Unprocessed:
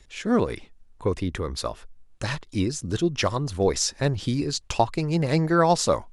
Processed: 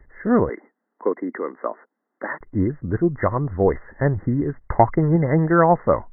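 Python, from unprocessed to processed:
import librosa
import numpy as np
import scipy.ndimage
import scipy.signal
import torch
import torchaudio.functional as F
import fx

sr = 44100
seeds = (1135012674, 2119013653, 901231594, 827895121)

y = fx.steep_highpass(x, sr, hz=240.0, slope=36, at=(0.49, 2.41))
y = fx.leveller(y, sr, passes=1, at=(4.58, 5.16))
y = fx.brickwall_lowpass(y, sr, high_hz=2100.0)
y = y * 10.0 ** (4.0 / 20.0)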